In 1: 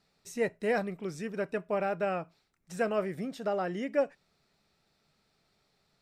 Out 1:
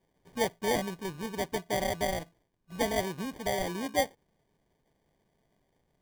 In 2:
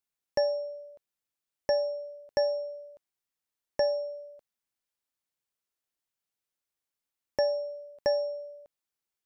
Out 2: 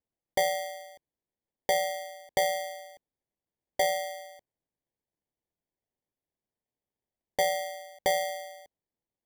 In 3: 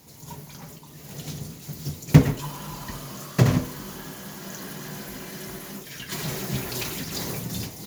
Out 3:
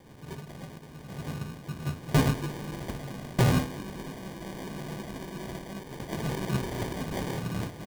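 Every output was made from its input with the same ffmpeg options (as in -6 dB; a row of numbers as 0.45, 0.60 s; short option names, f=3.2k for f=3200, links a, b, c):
-af "aresample=11025,volume=18dB,asoftclip=hard,volume=-18dB,aresample=44100,acrusher=samples=33:mix=1:aa=0.000001"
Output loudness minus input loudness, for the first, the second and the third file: +0.5, +0.5, -5.0 LU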